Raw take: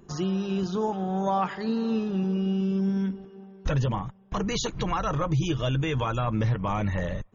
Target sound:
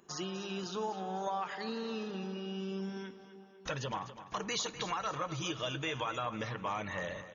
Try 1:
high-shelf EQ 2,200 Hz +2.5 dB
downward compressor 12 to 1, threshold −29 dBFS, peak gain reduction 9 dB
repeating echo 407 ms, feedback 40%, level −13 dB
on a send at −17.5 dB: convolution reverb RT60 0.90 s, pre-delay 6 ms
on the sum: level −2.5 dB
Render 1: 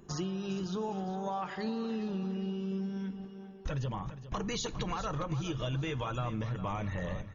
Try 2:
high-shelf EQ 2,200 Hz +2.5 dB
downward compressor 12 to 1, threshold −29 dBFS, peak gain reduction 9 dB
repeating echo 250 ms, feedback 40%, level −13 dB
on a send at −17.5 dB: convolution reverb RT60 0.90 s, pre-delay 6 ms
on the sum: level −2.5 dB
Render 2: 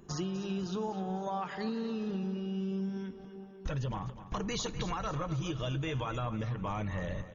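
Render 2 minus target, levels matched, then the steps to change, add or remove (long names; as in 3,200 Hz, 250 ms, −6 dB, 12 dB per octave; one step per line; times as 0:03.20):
1,000 Hz band −3.0 dB
add first: high-pass filter 730 Hz 6 dB per octave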